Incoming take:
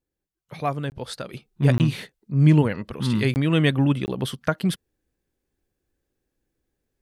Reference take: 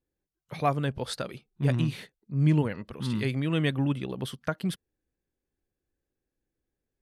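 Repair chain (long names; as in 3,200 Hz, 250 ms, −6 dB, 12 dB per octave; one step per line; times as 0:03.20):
repair the gap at 0:00.90/0:01.78/0:03.34/0:04.06, 19 ms
level correction −7 dB, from 0:01.33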